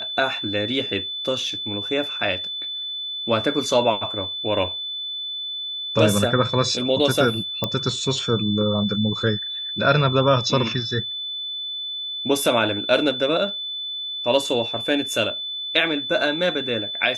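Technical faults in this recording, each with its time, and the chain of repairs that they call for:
tone 3500 Hz -27 dBFS
7.64 pop -8 dBFS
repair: de-click; notch 3500 Hz, Q 30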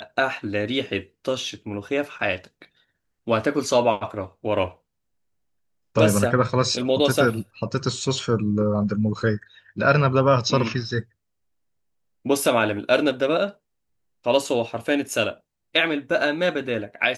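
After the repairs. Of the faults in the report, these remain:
none

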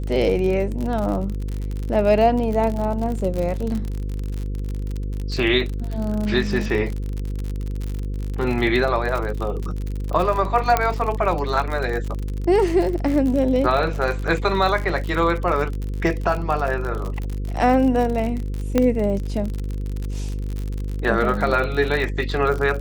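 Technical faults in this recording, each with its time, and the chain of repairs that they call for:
buzz 50 Hz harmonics 10 -26 dBFS
crackle 56/s -25 dBFS
10.77 pop -4 dBFS
18.78 pop -6 dBFS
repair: de-click; de-hum 50 Hz, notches 10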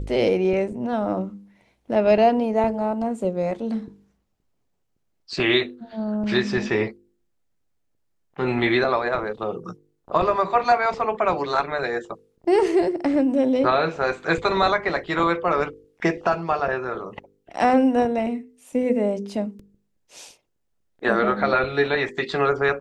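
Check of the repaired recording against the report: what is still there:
none

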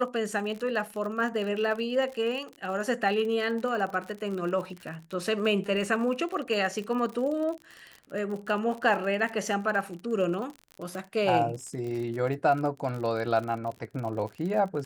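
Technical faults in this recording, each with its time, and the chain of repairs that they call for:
crackle 49/s -34 dBFS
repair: de-click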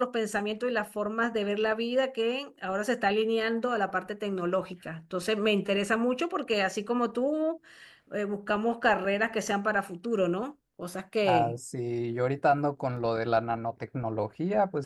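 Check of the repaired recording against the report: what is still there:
none

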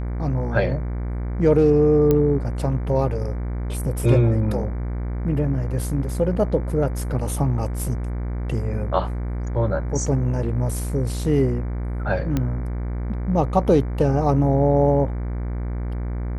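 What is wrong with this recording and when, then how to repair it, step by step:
buzz 60 Hz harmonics 39 -26 dBFS
2.11 pop -8 dBFS
12.37 pop -10 dBFS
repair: de-click; de-hum 60 Hz, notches 39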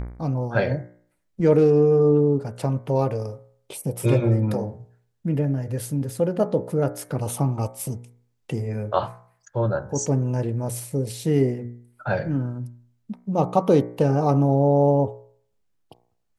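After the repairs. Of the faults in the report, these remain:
2.11 pop

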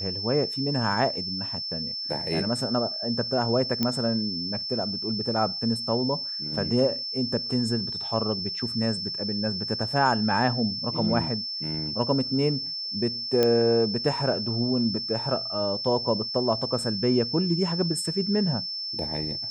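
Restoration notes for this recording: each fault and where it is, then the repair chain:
tone 5300 Hz -30 dBFS
3.83 pop -11 dBFS
13.43 pop -9 dBFS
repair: de-click; notch 5300 Hz, Q 30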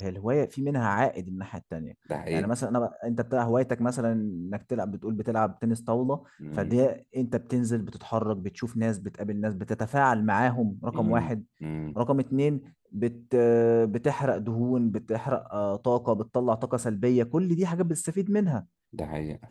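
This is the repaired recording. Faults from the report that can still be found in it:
none

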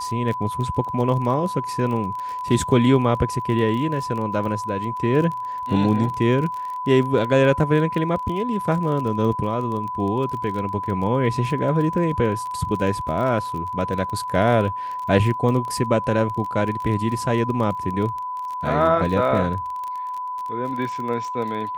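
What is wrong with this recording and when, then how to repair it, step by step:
crackle 25/s -28 dBFS
tone 1000 Hz -26 dBFS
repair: de-click; notch 1000 Hz, Q 30

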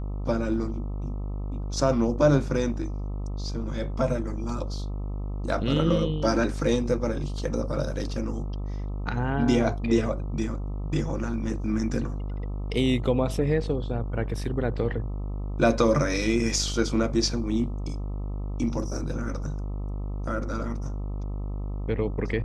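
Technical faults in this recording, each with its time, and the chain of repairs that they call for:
buzz 50 Hz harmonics 26 -31 dBFS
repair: de-hum 50 Hz, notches 26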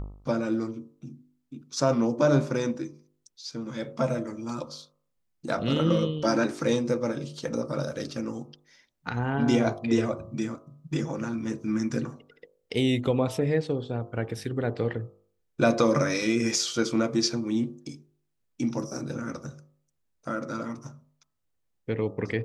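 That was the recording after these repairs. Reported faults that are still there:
none

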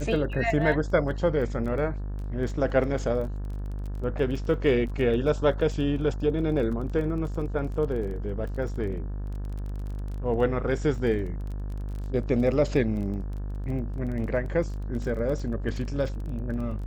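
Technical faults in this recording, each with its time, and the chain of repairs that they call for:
buzz 50 Hz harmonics 36 -32 dBFS
crackle 22/s -35 dBFS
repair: de-click; de-hum 50 Hz, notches 36

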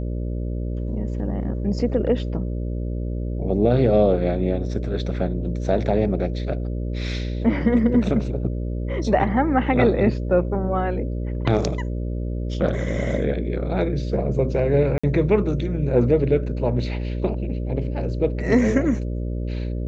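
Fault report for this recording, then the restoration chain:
buzz 60 Hz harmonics 10 -26 dBFS
14.98–15.04 gap 55 ms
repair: de-hum 60 Hz, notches 10; interpolate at 14.98, 55 ms

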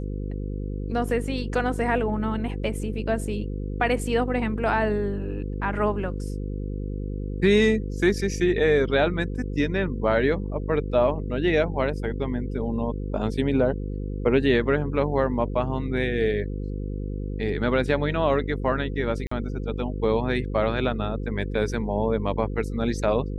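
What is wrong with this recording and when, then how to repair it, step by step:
buzz 50 Hz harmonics 10 -30 dBFS
19.27–19.31 gap 44 ms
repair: de-hum 50 Hz, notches 10; interpolate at 19.27, 44 ms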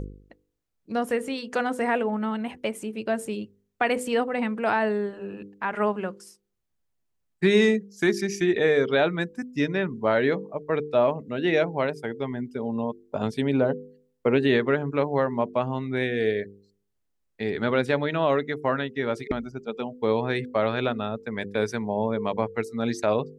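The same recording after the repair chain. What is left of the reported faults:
none

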